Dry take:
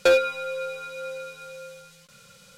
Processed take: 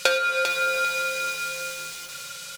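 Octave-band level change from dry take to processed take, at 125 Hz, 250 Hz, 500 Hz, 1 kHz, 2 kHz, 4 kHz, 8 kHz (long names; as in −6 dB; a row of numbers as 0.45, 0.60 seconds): −1.5 dB, can't be measured, −5.0 dB, +8.0 dB, +6.0 dB, +7.5 dB, +12.0 dB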